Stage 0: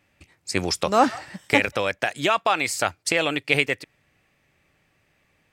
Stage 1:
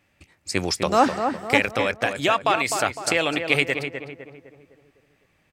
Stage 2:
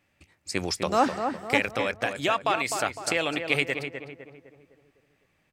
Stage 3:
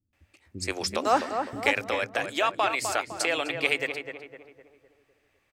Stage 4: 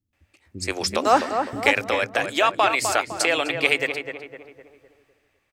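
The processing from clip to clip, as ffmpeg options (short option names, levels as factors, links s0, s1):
-filter_complex "[0:a]asplit=2[s0][s1];[s1]adelay=254,lowpass=f=1700:p=1,volume=0.501,asplit=2[s2][s3];[s3]adelay=254,lowpass=f=1700:p=1,volume=0.48,asplit=2[s4][s5];[s5]adelay=254,lowpass=f=1700:p=1,volume=0.48,asplit=2[s6][s7];[s7]adelay=254,lowpass=f=1700:p=1,volume=0.48,asplit=2[s8][s9];[s9]adelay=254,lowpass=f=1700:p=1,volume=0.48,asplit=2[s10][s11];[s11]adelay=254,lowpass=f=1700:p=1,volume=0.48[s12];[s0][s2][s4][s6][s8][s10][s12]amix=inputs=7:normalize=0"
-af "bandreject=f=50:t=h:w=6,bandreject=f=100:t=h:w=6,volume=0.596"
-filter_complex "[0:a]equalizer=f=160:t=o:w=0.45:g=-13,acrossover=split=260[s0][s1];[s1]adelay=130[s2];[s0][s2]amix=inputs=2:normalize=0"
-af "dynaudnorm=f=180:g=7:m=2.11"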